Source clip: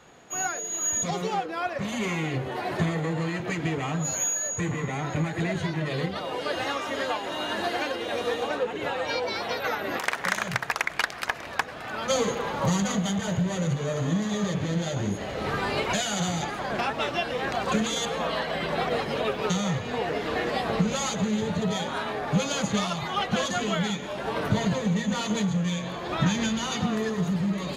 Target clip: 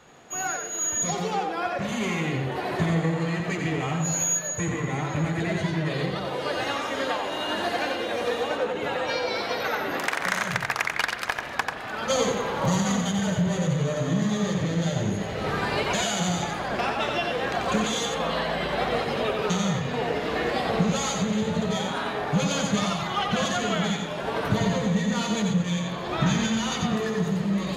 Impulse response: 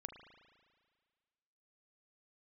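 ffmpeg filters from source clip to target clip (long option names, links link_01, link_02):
-filter_complex "[0:a]asplit=2[link_01][link_02];[1:a]atrim=start_sample=2205,adelay=90[link_03];[link_02][link_03]afir=irnorm=-1:irlink=0,volume=1dB[link_04];[link_01][link_04]amix=inputs=2:normalize=0"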